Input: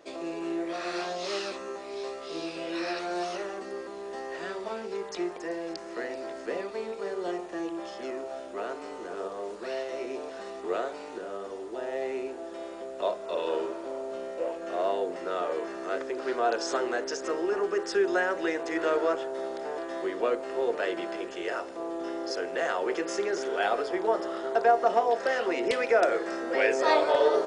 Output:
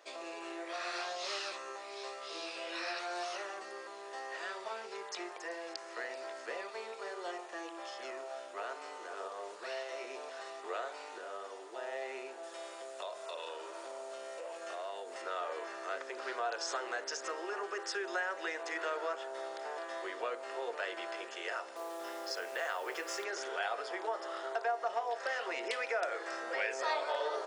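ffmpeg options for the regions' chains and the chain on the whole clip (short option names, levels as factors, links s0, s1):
-filter_complex "[0:a]asettb=1/sr,asplit=3[s0][s1][s2];[s0]atrim=end=12.434[s3];[s1]atrim=start=12.43:end=15.22,asetpts=PTS-STARTPTS,afade=t=in:d=0.004:c=qsin,afade=t=out:st=2.786:d=0.004:c=qsin,aemphasis=mode=production:type=cd,acompressor=threshold=0.0224:ratio=4:attack=3.2:release=140:knee=1:detection=peak[s4];[s2]atrim=start=15.216[s5];[s3][s4]acrossfade=d=0.004:c1=hsin:c2=qsin[s6];[s6][s5]acrossfade=d=0.004:c1=qsin:c2=hsin,asettb=1/sr,asplit=3[s7][s8][s9];[s7]atrim=end=21.764[s10];[s8]atrim=start=21.76:end=23.24,asetpts=PTS-STARTPTS,afade=t=in:d=0.004:c=qsin,afade=t=out:st=1.476:d=0.004:c=qsin,bandreject=f=6400:w=23,acrusher=bits=7:mix=0:aa=0.5[s11];[s9]atrim=start=23.236[s12];[s10][s11]acrossfade=d=0.004:c1=hsin:c2=qsin[s13];[s13][s12]acrossfade=d=0.004:c1=qsin:c2=hsin,highpass=760,acompressor=threshold=0.0178:ratio=2,volume=0.891"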